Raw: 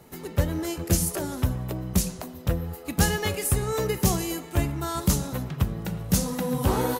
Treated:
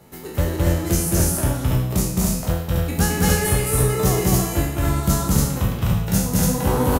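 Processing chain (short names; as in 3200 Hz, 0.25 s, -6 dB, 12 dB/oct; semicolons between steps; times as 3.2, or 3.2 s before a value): spectral trails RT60 0.70 s; loudspeakers at several distances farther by 74 m -1 dB, 98 m -1 dB; dynamic EQ 3700 Hz, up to -4 dB, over -36 dBFS, Q 0.89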